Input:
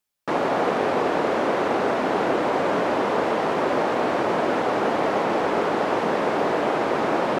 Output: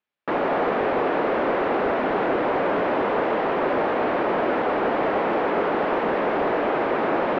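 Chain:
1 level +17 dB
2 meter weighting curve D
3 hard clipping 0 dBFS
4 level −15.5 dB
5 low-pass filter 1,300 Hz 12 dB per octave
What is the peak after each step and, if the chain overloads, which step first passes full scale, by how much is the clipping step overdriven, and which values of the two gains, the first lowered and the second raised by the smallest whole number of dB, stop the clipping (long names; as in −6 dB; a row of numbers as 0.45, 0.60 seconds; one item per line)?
+8.5, +8.5, 0.0, −15.5, −15.0 dBFS
step 1, 8.5 dB
step 1 +8 dB, step 4 −6.5 dB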